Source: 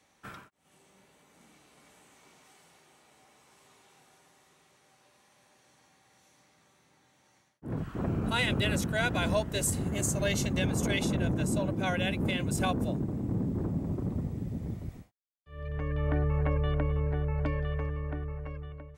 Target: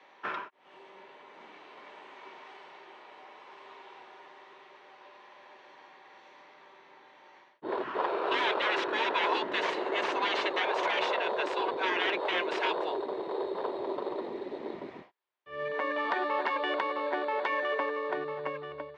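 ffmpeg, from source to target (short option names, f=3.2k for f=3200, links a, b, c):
-filter_complex "[0:a]asplit=2[a][b];[b]acrusher=samples=11:mix=1:aa=0.000001,volume=-10dB[c];[a][c]amix=inputs=2:normalize=0,highshelf=f=2.4k:g=10,afftfilt=real='re*lt(hypot(re,im),0.112)':imag='im*lt(hypot(re,im),0.112)':win_size=1024:overlap=0.75,aeval=exprs='(mod(12.6*val(0)+1,2)-1)/12.6':c=same,highpass=370,equalizer=f=380:t=q:w=4:g=9,equalizer=f=590:t=q:w=4:g=4,equalizer=f=970:t=q:w=4:g=10,equalizer=f=1.8k:t=q:w=4:g=3,lowpass=f=3.3k:w=0.5412,lowpass=f=3.3k:w=1.3066,volume=4.5dB"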